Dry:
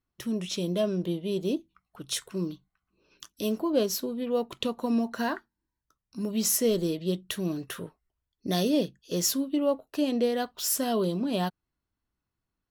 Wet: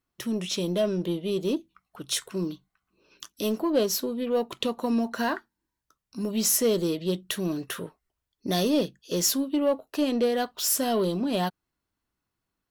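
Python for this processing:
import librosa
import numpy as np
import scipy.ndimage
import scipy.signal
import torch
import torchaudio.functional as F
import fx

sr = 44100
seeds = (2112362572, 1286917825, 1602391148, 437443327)

p1 = fx.low_shelf(x, sr, hz=150.0, db=-7.5)
p2 = 10.0 ** (-28.0 / 20.0) * np.tanh(p1 / 10.0 ** (-28.0 / 20.0))
y = p1 + (p2 * 10.0 ** (-3.5 / 20.0))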